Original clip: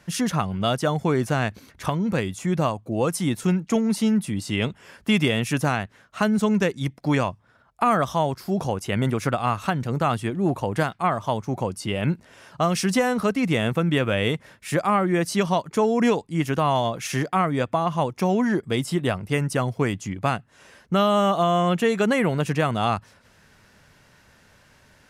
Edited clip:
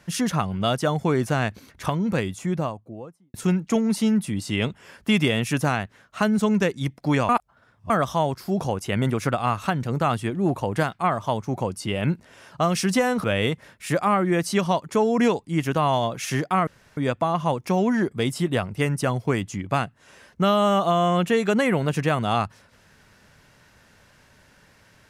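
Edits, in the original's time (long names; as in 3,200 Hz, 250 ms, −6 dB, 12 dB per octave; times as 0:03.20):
0:02.18–0:03.34: fade out and dull
0:07.29–0:07.90: reverse
0:13.24–0:14.06: remove
0:17.49: splice in room tone 0.30 s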